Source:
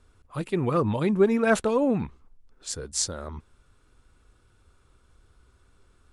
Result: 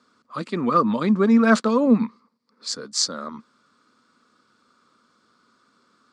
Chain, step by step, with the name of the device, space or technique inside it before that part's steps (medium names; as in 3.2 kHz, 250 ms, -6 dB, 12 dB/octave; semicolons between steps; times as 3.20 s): 1.85–2.69 s: rippled EQ curve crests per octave 0.91, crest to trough 7 dB; television speaker (cabinet simulation 190–7400 Hz, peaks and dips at 230 Hz +8 dB, 380 Hz -6 dB, 790 Hz -6 dB, 1.2 kHz +9 dB, 2.7 kHz -5 dB, 4.6 kHz +9 dB); trim +3 dB